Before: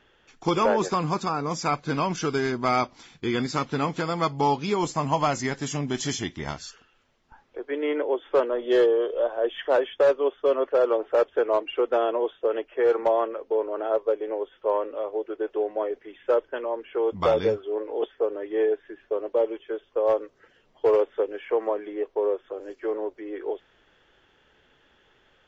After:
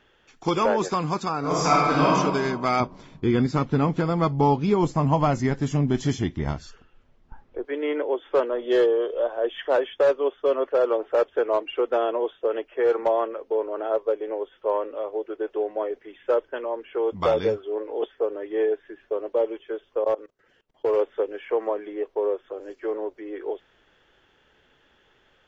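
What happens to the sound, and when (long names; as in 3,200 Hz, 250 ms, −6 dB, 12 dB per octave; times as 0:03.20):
0:01.39–0:02.10: thrown reverb, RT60 1.5 s, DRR −6 dB
0:02.80–0:07.65: spectral tilt −3 dB per octave
0:20.04–0:20.97: output level in coarse steps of 21 dB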